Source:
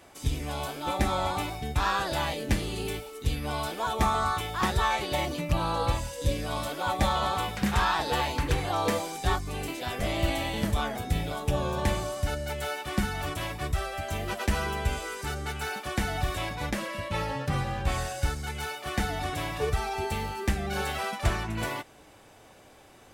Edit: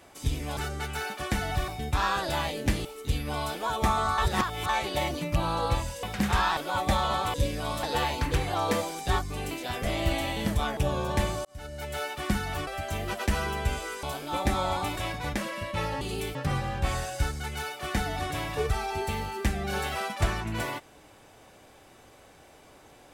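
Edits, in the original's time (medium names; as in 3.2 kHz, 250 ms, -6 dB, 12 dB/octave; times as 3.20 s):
0.57–1.51 s: swap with 15.23–16.34 s
2.68–3.02 s: move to 17.38 s
4.35–4.86 s: reverse
6.20–6.69 s: swap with 7.46–8.00 s
10.94–11.45 s: delete
12.13–12.70 s: fade in
13.35–13.87 s: delete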